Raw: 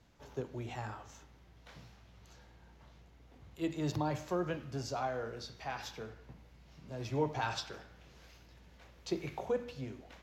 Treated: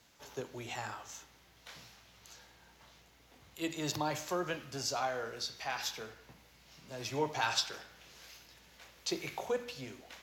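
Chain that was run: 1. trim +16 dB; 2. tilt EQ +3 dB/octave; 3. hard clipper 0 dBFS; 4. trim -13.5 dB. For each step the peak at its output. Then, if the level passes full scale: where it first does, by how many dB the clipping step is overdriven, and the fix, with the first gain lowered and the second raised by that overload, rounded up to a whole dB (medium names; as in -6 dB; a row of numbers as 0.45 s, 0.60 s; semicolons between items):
-4.5 dBFS, -3.0 dBFS, -3.0 dBFS, -16.5 dBFS; nothing clips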